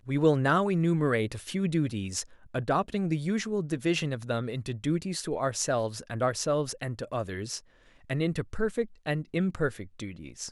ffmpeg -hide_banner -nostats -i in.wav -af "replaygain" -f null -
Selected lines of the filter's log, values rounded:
track_gain = +10.0 dB
track_peak = 0.201